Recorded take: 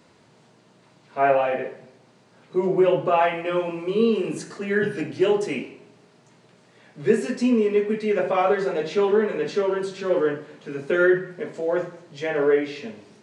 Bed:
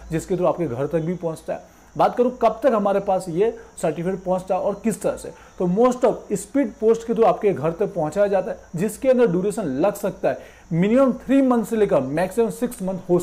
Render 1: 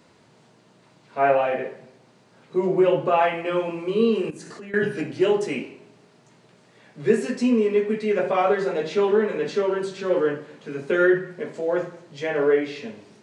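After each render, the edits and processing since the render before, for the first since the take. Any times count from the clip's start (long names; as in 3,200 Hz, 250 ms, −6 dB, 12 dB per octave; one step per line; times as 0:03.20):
0:04.30–0:04.74: downward compressor 12 to 1, threshold −35 dBFS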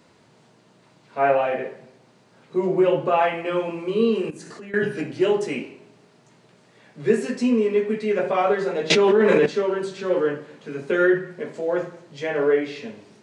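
0:08.90–0:09.46: envelope flattener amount 100%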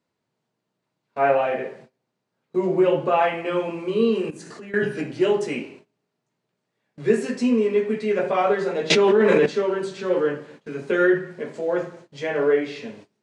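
noise gate −44 dBFS, range −23 dB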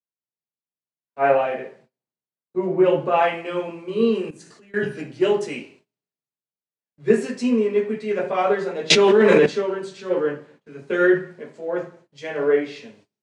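multiband upward and downward expander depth 70%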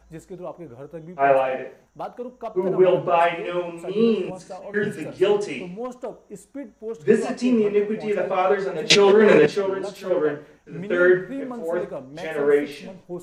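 mix in bed −15 dB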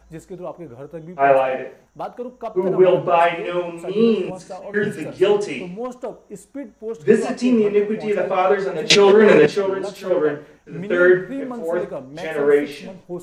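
level +3 dB
brickwall limiter −1 dBFS, peak gain reduction 1.5 dB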